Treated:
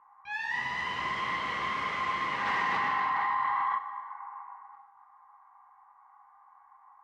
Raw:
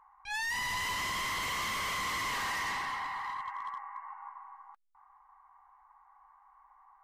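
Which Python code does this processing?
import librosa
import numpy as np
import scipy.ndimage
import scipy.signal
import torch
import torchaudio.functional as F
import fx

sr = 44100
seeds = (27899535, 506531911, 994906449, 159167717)

y = fx.bandpass_edges(x, sr, low_hz=110.0, high_hz=2400.0)
y = fx.rev_gated(y, sr, seeds[0], gate_ms=450, shape='falling', drr_db=-1.0)
y = fx.env_flatten(y, sr, amount_pct=100, at=(2.45, 3.77), fade=0.02)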